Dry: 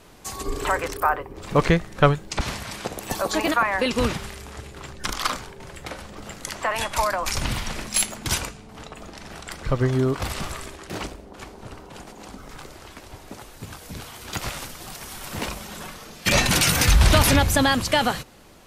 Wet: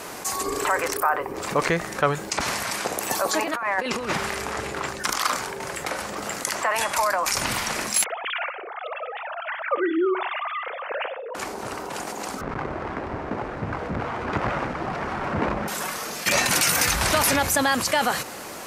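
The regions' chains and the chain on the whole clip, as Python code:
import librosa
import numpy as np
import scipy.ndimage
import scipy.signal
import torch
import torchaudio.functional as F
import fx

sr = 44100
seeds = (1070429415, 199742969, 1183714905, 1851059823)

y = fx.chain(x, sr, fx.high_shelf(hz=6100.0, db=-10.5),
    fx.over_compress(threshold_db=-27.0, ratio=-0.5), at=(3.42, 4.89))
y = fx.chain(y, sr, fx.sine_speech(),
    fx.room_flutter(wall_m=10.1, rt60_s=0.23), at=(8.04, 11.35))
y = fx.chain(y, sr, fx.halfwave_hold(),
    fx.lowpass(hz=1800.0, slope=12),
    fx.low_shelf(hz=260.0, db=8.5), at=(12.41, 15.68))
y = fx.highpass(y, sr, hz=570.0, slope=6)
y = fx.peak_eq(y, sr, hz=3400.0, db=-6.5, octaves=0.85)
y = fx.env_flatten(y, sr, amount_pct=50)
y = y * 10.0 ** (-2.0 / 20.0)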